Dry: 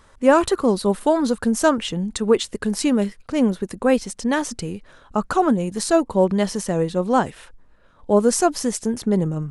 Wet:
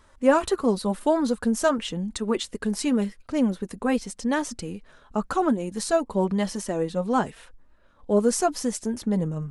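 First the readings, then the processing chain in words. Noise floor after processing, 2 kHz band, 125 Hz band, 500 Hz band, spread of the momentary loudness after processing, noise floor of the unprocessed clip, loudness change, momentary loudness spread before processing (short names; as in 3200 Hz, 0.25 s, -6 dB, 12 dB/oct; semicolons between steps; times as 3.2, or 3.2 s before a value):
-57 dBFS, -4.5 dB, -5.0 dB, -5.0 dB, 7 LU, -53 dBFS, -5.0 dB, 7 LU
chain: flange 0.9 Hz, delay 3 ms, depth 1.9 ms, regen -40%; gain -1 dB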